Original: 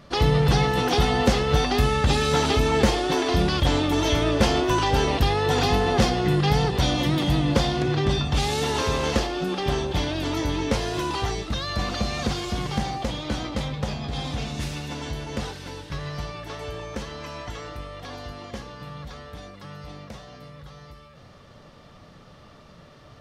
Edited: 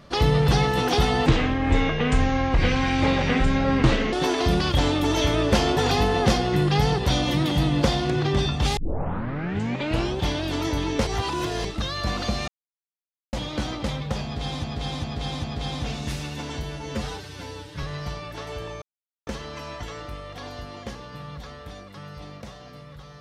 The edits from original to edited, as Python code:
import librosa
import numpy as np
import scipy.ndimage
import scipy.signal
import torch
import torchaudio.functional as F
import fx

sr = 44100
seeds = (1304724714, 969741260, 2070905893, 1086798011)

y = fx.edit(x, sr, fx.speed_span(start_s=1.26, length_s=1.75, speed=0.61),
    fx.cut(start_s=4.65, length_s=0.84),
    fx.tape_start(start_s=8.49, length_s=1.43),
    fx.reverse_span(start_s=10.79, length_s=0.58),
    fx.silence(start_s=12.2, length_s=0.85),
    fx.repeat(start_s=13.96, length_s=0.4, count=4),
    fx.stretch_span(start_s=15.15, length_s=0.8, factor=1.5),
    fx.insert_silence(at_s=16.94, length_s=0.45), tone=tone)